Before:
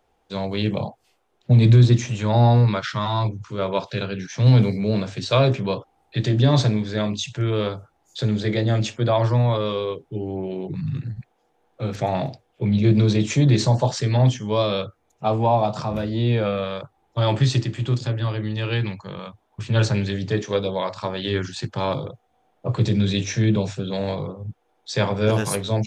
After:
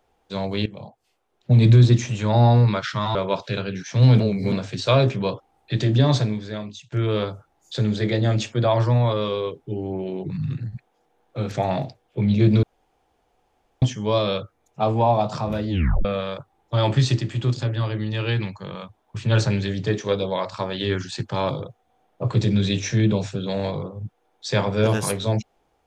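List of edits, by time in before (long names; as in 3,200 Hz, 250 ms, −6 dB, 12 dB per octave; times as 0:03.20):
0:00.66–0:01.64: fade in, from −18.5 dB
0:03.15–0:03.59: remove
0:04.64–0:04.96: reverse
0:06.40–0:07.36: fade out, to −20.5 dB
0:13.07–0:14.26: fill with room tone
0:16.14: tape stop 0.35 s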